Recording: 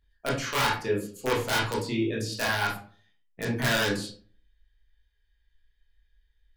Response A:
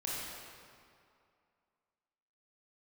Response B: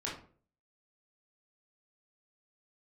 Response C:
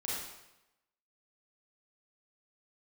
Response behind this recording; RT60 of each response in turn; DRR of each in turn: B; 2.4, 0.45, 0.95 seconds; −6.5, −5.5, −7.0 decibels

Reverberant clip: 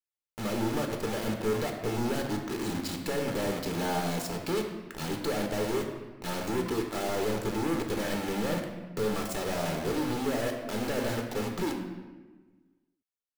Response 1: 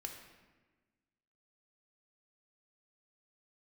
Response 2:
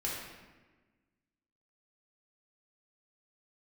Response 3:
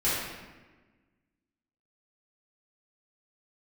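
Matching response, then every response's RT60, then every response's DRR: 1; 1.3, 1.3, 1.3 seconds; 2.5, −5.5, −11.5 decibels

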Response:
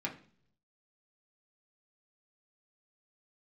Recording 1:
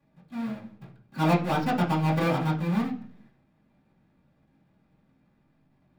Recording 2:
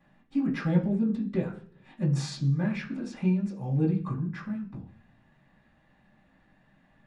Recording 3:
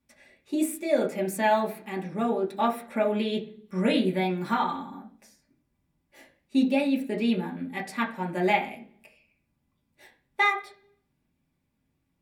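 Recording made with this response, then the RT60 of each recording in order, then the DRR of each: 3; 0.50, 0.50, 0.50 seconds; −12.0, −17.0, −2.5 decibels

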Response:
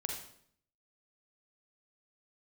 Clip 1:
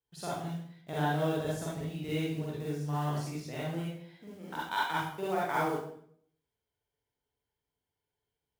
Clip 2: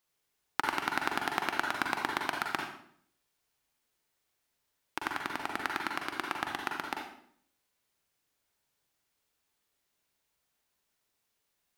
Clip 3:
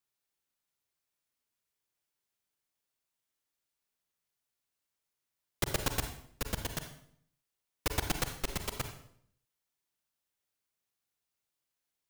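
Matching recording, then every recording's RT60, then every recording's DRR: 2; 0.65, 0.65, 0.65 seconds; −7.0, 1.0, 6.0 decibels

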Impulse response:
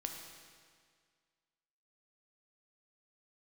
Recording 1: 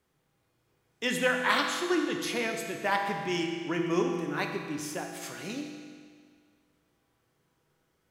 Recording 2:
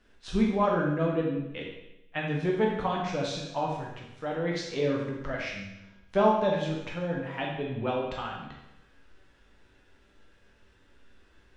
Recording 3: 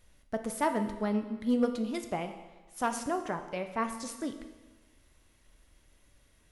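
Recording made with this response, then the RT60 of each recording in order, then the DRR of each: 1; 1.9, 0.90, 1.2 seconds; 2.5, −3.0, 6.5 decibels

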